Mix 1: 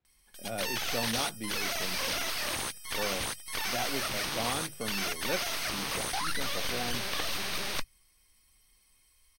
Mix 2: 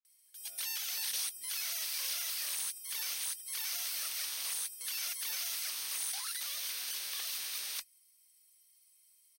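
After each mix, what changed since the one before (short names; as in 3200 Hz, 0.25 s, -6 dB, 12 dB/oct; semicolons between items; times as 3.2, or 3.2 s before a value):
speech -10.5 dB; master: add differentiator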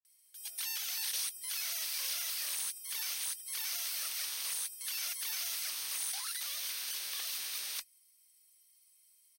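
speech -7.5 dB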